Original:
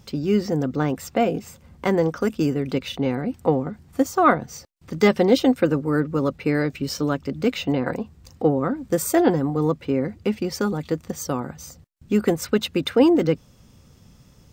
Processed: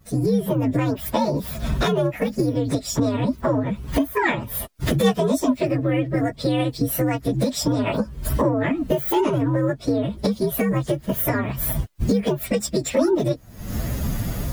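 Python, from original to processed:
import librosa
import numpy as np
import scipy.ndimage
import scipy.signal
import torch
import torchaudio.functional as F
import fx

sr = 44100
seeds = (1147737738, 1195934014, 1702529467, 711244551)

y = fx.partial_stretch(x, sr, pct=126)
y = fx.recorder_agc(y, sr, target_db=-13.5, rise_db_per_s=70.0, max_gain_db=30)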